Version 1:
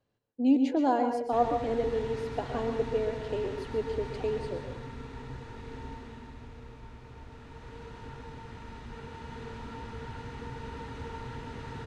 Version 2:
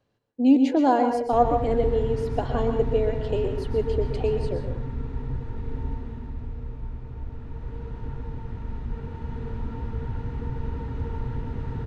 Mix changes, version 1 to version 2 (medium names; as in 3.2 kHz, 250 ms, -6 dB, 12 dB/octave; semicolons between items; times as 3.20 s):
speech +6.0 dB; background: add tilt EQ -3.5 dB/octave